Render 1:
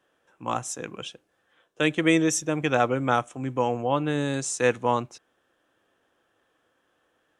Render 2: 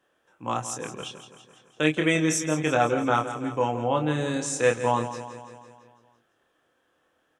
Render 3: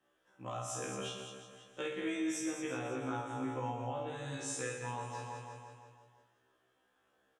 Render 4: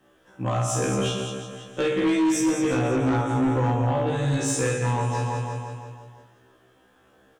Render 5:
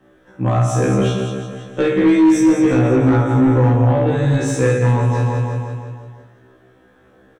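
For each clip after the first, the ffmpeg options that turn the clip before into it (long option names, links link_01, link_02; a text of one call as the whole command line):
ffmpeg -i in.wav -filter_complex "[0:a]asplit=2[link_01][link_02];[link_02]adelay=26,volume=-5dB[link_03];[link_01][link_03]amix=inputs=2:normalize=0,asplit=2[link_04][link_05];[link_05]aecho=0:1:168|336|504|672|840|1008|1176:0.251|0.148|0.0874|0.0516|0.0304|0.018|0.0106[link_06];[link_04][link_06]amix=inputs=2:normalize=0,volume=-1.5dB" out.wav
ffmpeg -i in.wav -af "acompressor=threshold=-30dB:ratio=6,aecho=1:1:50|120|218|355.2|547.3:0.631|0.398|0.251|0.158|0.1,afftfilt=real='re*1.73*eq(mod(b,3),0)':imag='im*1.73*eq(mod(b,3),0)':win_size=2048:overlap=0.75,volume=-5dB" out.wav
ffmpeg -i in.wav -filter_complex "[0:a]lowshelf=frequency=360:gain=10,asplit=2[link_01][link_02];[link_02]aeval=exprs='0.0891*sin(PI/2*2.82*val(0)/0.0891)':channel_layout=same,volume=-9.5dB[link_03];[link_01][link_03]amix=inputs=2:normalize=0,volume=5.5dB" out.wav
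ffmpeg -i in.wav -filter_complex "[0:a]highshelf=frequency=2800:gain=-11.5,asplit=2[link_01][link_02];[link_02]adelay=16,volume=-7dB[link_03];[link_01][link_03]amix=inputs=2:normalize=0,volume=7.5dB" out.wav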